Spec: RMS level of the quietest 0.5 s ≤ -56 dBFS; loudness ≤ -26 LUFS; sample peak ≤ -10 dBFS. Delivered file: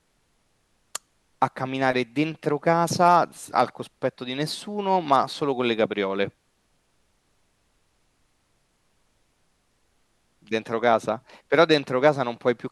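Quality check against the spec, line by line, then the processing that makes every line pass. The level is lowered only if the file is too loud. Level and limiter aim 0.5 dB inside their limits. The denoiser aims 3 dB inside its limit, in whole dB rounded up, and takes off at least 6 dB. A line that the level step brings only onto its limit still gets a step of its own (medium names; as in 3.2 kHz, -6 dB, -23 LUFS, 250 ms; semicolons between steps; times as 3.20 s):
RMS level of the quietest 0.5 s -68 dBFS: pass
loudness -23.5 LUFS: fail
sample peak -5.5 dBFS: fail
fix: trim -3 dB; peak limiter -10.5 dBFS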